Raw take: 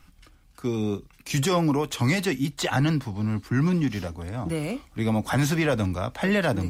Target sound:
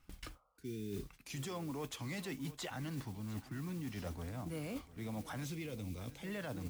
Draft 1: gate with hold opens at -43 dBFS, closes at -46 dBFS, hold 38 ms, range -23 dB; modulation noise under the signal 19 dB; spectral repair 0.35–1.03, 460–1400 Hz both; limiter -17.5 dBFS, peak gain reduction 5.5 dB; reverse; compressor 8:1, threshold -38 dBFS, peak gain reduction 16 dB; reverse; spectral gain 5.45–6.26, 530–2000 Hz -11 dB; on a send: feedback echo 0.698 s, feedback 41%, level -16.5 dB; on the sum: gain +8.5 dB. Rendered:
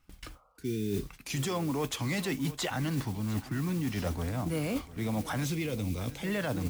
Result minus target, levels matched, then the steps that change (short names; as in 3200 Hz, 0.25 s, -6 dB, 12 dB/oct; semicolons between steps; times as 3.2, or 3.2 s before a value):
compressor: peak gain reduction -10.5 dB
change: compressor 8:1, threshold -50 dBFS, peak gain reduction 26.5 dB